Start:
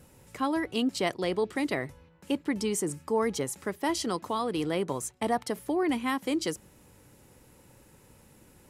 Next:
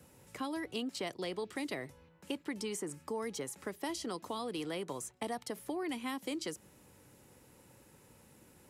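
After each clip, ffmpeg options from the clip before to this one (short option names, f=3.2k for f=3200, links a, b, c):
-filter_complex "[0:a]highpass=f=93:p=1,acrossover=split=230|890|2500[a][b][c][d];[a]acompressor=threshold=-47dB:ratio=4[e];[b]acompressor=threshold=-36dB:ratio=4[f];[c]acompressor=threshold=-46dB:ratio=4[g];[d]acompressor=threshold=-39dB:ratio=4[h];[e][f][g][h]amix=inputs=4:normalize=0,volume=-3dB"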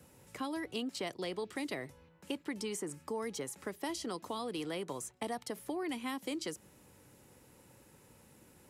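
-af anull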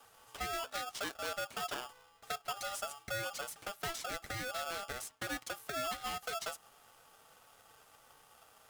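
-af "flanger=delay=5:depth=2.3:regen=-39:speed=1.4:shape=triangular,aeval=exprs='val(0)*sgn(sin(2*PI*1000*n/s))':c=same,volume=2.5dB"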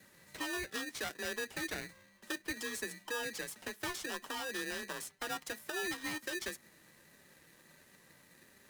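-af "afftfilt=real='real(if(between(b,1,1008),(2*floor((b-1)/48)+1)*48-b,b),0)':imag='imag(if(between(b,1,1008),(2*floor((b-1)/48)+1)*48-b,b),0)*if(between(b,1,1008),-1,1)':win_size=2048:overlap=0.75"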